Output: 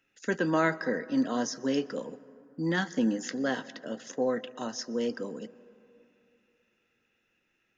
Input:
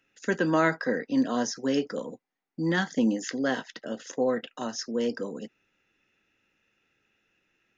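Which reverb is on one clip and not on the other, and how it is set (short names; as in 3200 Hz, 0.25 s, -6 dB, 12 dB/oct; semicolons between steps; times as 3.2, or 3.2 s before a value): plate-style reverb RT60 3 s, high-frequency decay 0.35×, pre-delay 0.11 s, DRR 19 dB; gain -2.5 dB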